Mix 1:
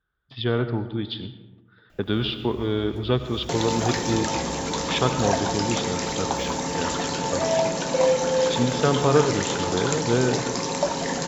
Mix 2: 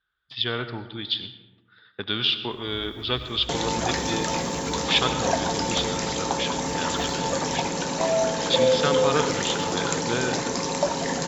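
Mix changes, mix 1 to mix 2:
speech: add tilt shelf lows -9.5 dB, about 1200 Hz; first sound: entry +0.60 s

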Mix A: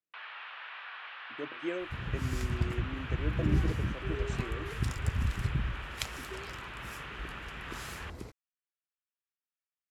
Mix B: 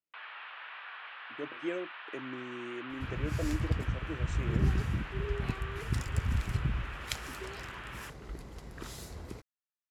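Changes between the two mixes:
first sound: add air absorption 110 m; second sound: entry +1.10 s

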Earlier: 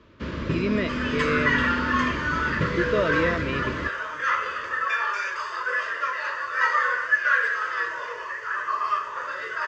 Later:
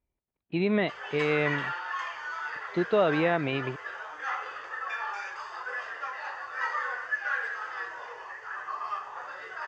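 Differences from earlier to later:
first sound: muted; second sound -9.5 dB; master: remove Butterworth band-stop 780 Hz, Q 2.6

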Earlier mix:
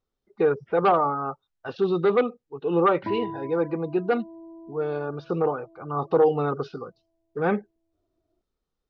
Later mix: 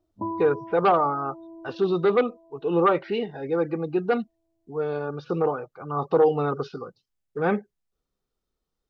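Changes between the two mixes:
background: entry -2.85 s; master: remove air absorption 62 m

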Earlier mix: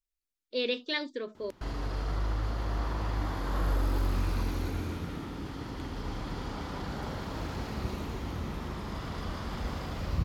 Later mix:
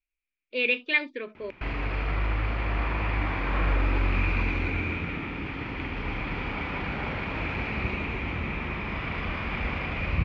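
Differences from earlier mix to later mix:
background +3.5 dB; master: add synth low-pass 2400 Hz, resonance Q 9.1

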